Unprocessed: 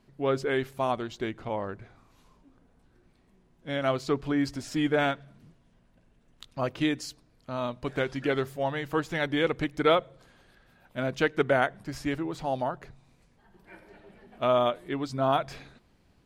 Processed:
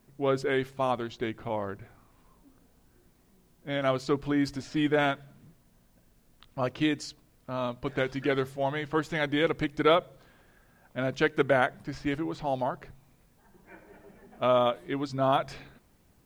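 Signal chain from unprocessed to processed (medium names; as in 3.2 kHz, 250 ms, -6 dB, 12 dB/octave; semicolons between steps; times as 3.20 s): level-controlled noise filter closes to 1.9 kHz, open at -24.5 dBFS; word length cut 12-bit, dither triangular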